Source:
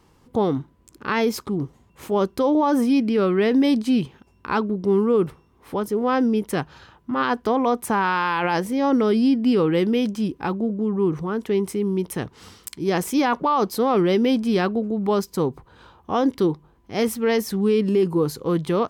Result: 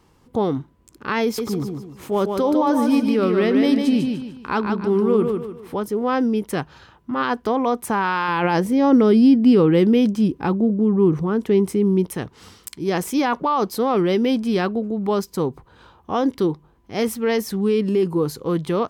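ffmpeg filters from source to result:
-filter_complex "[0:a]asettb=1/sr,asplit=3[a][b][c];[a]atrim=end=1.234[d];[b]atrim=start=1.23:end=5.79,asetpts=PTS-STARTPTS,afade=t=in:d=0.004:c=qsin,afade=t=out:st=4.556:d=0.004:c=qsin,aecho=1:1:149|298|447|596:0.562|0.202|0.0729|0.0262,atrim=end_sample=201096[e];[c]atrim=start=5.786[f];[d][e]acrossfade=d=0.004:c1=hsin:c2=qsin[g];[g][f]acrossfade=d=0.004:c1=qsin:c2=hsin,asettb=1/sr,asplit=3[h][i][j];[h]atrim=end=8.284[k];[i]atrim=start=8.28:end=12.07,asetpts=PTS-STARTPTS,afade=t=in:d=0.004:c=qsin,afade=t=out:st=3.786:d=0.004:c=qsin,equalizer=f=160:w=0.32:g=6[l];[j]atrim=start=12.066[m];[k][l]acrossfade=d=0.004:c1=hsin:c2=qsin[n];[n][m]acrossfade=d=0.004:c1=qsin:c2=hsin"

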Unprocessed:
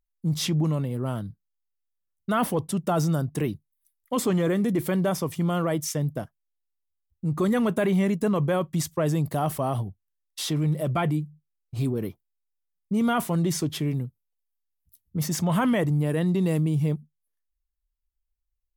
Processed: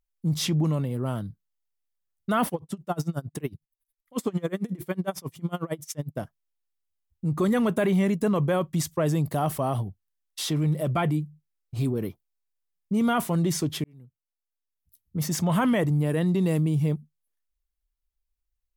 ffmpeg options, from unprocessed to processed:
-filter_complex "[0:a]asplit=3[a][b][c];[a]afade=t=out:st=2.48:d=0.02[d];[b]aeval=exprs='val(0)*pow(10,-27*(0.5-0.5*cos(2*PI*11*n/s))/20)':c=same,afade=t=in:st=2.48:d=0.02,afade=t=out:st=6.17:d=0.02[e];[c]afade=t=in:st=6.17:d=0.02[f];[d][e][f]amix=inputs=3:normalize=0,asplit=2[g][h];[g]atrim=end=13.84,asetpts=PTS-STARTPTS,afade=t=out:st=13.836:d=0.004:c=hsin[i];[h]atrim=start=13.84,asetpts=PTS-STARTPTS,afade=t=in:d=1.51[j];[i][j]concat=n=2:v=0:a=1"

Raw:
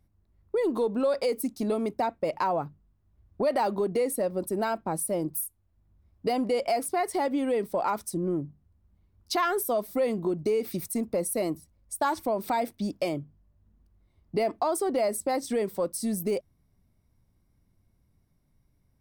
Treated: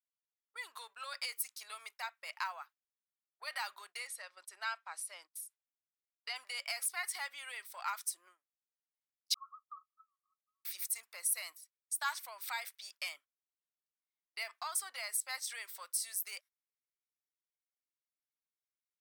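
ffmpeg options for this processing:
-filter_complex "[0:a]asettb=1/sr,asplit=3[a][b][c];[a]atrim=end=4.074[d];[b]atrim=start=4.07:end=6.36,asetpts=PTS-STARTPTS,afade=t=in:d=0.004:c=qsin,afade=t=out:st=2.286:d=0.004:c=qsin,highpass=170,lowpass=6k[e];[c]atrim=start=6.356[f];[d][e]acrossfade=d=0.004:c1=hsin:c2=qsin[g];[g][f]acrossfade=d=0.004:c1=qsin:c2=hsin,asettb=1/sr,asplit=3[h][i][j];[h]atrim=end=9.344[k];[i]atrim=start=9.34:end=10.65,asetpts=PTS-STARTPTS,afade=t=in:d=0.004:c=qsin,afade=t=out:st=1.306:d=0.004:c=qsin,asuperpass=centerf=1200:order=20:qfactor=5.7[l];[j]atrim=start=10.646[m];[k][l]acrossfade=d=0.004:c1=hsin:c2=qsin[n];[n][m]acrossfade=d=0.004:c1=qsin:c2=hsin,highpass=f=1.4k:w=0.5412,highpass=f=1.4k:w=1.3066,agate=range=-20dB:threshold=-57dB:ratio=16:detection=peak"

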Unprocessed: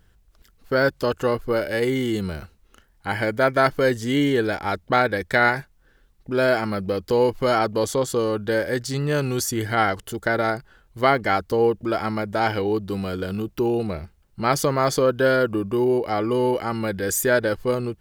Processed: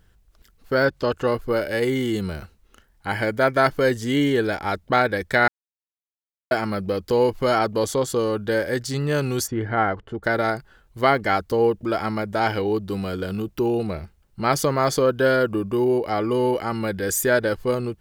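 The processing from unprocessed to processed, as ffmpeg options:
-filter_complex "[0:a]asettb=1/sr,asplit=3[a][b][c];[a]atrim=end=0.854[d];[b]atrim=start=0.85:end=1.27,asetpts=PTS-STARTPTS,afade=t=in:d=0.004:c=qsin,afade=t=out:st=0.416:d=0.004:c=qsin,acrossover=split=5900[e][f];[f]acompressor=threshold=-57dB:ratio=4:attack=1:release=60[g];[e][g]amix=inputs=2:normalize=0[h];[c]atrim=start=1.266[i];[d][h]acrossfade=d=0.004:c1=hsin:c2=qsin[j];[j][i]acrossfade=d=0.004:c1=qsin:c2=hsin,asplit=3[k][l][m];[k]afade=t=out:st=9.46:d=0.02[n];[l]lowpass=1.7k,afade=t=in:st=9.46:d=0.02,afade=t=out:st=10.23:d=0.02[o];[m]afade=t=in:st=10.23:d=0.02[p];[n][o][p]amix=inputs=3:normalize=0,asplit=3[q][r][s];[q]atrim=end=5.48,asetpts=PTS-STARTPTS,afade=t=out:st=5.476:d=0.004:c=hsin[t];[r]atrim=start=5.48:end=6.51,asetpts=PTS-STARTPTS,volume=0[u];[s]atrim=start=6.51,asetpts=PTS-STARTPTS,afade=t=in:d=0.004:c=hsin[v];[t][u][v]concat=n=3:v=0:a=1"

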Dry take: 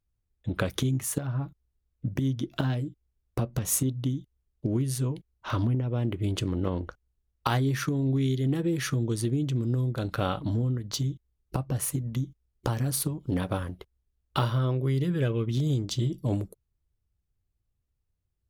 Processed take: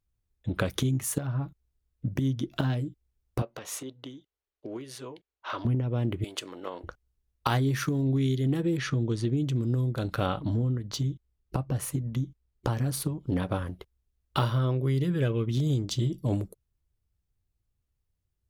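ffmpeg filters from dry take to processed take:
-filter_complex "[0:a]asettb=1/sr,asplit=3[a][b][c];[a]atrim=end=3.424[d];[b]atrim=start=3.42:end=5.65,asetpts=PTS-STARTPTS,afade=t=in:d=0.004:c=qsin,afade=t=out:st=2.226:d=0.004:c=qsin,acrossover=split=370 5100:gain=0.0631 1 0.2[e][f][g];[e][f][g]amix=inputs=3:normalize=0[h];[c]atrim=start=5.646[i];[d][h]acrossfade=d=0.004:c1=hsin:c2=qsin[j];[j][i]acrossfade=d=0.004:c1=qsin:c2=hsin,asettb=1/sr,asplit=3[k][l][m];[k]atrim=end=6.244[n];[l]atrim=start=6.24:end=6.84,asetpts=PTS-STARTPTS,afade=t=in:d=0.004:c=qsin,afade=t=out:st=0.596:d=0.004:c=qsin,highpass=600[o];[m]atrim=start=6.836[p];[n][o]acrossfade=d=0.004:c1=hsin:c2=qsin[q];[q][p]acrossfade=d=0.004:c1=qsin:c2=hsin,asettb=1/sr,asplit=3[r][s][t];[r]atrim=end=7.534[u];[s]atrim=start=7.53:end=8.02,asetpts=PTS-STARTPTS,afade=t=in:d=0.004:c=qsin,afade=t=out:st=0.486:d=0.004:c=qsin,aeval=exprs='val(0)*gte(abs(val(0)),0.00266)':c=same[v];[t]atrim=start=8.016[w];[u][v]acrossfade=d=0.004:c1=hsin:c2=qsin[x];[x][w]acrossfade=d=0.004:c1=qsin:c2=hsin,asettb=1/sr,asplit=3[y][z][aa];[y]atrim=end=8.774[ab];[z]atrim=start=8.77:end=9.37,asetpts=PTS-STARTPTS,afade=t=in:d=0.004:c=qsin,afade=t=out:st=0.596:d=0.004:c=qsin,lowpass=5k[ac];[aa]atrim=start=9.366[ad];[ab][ac]acrossfade=d=0.004:c1=hsin:c2=qsin[ae];[ae][ad]acrossfade=d=0.004:c1=qsin:c2=hsin,asettb=1/sr,asplit=3[af][ag][ah];[af]atrim=end=10.264[ai];[ag]atrim=start=10.26:end=13.66,asetpts=PTS-STARTPTS,afade=t=in:d=0.004:c=qsin,afade=t=out:st=3.396:d=0.004:c=qsin,highshelf=f=5.3k:g=-6.5[aj];[ah]atrim=start=13.656[ak];[ai][aj]acrossfade=d=0.004:c1=hsin:c2=qsin[al];[al][ak]acrossfade=d=0.004:c1=qsin:c2=hsin"

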